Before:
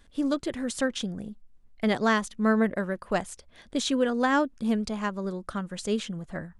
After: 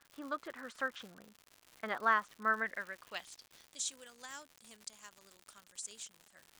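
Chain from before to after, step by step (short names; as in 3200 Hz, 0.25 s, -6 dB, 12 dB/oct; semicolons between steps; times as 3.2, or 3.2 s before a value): band-pass sweep 1300 Hz -> 7700 Hz, 2.42–3.84; crackle 190/s -44 dBFS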